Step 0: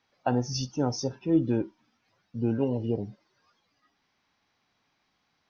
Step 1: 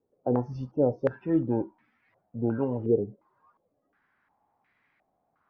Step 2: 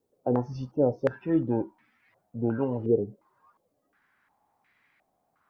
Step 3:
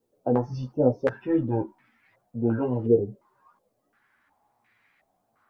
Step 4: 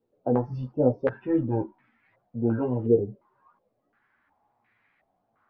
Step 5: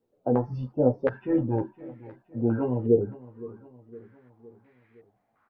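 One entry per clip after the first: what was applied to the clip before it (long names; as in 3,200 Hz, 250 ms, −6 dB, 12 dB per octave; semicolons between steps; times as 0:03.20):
low-pass on a step sequencer 2.8 Hz 440–2,000 Hz; level −2 dB
high-shelf EQ 2,500 Hz +9 dB
multi-voice chorus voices 4, 0.67 Hz, delay 13 ms, depth 4.8 ms; level +5 dB
high-frequency loss of the air 290 metres
repeating echo 513 ms, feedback 54%, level −19 dB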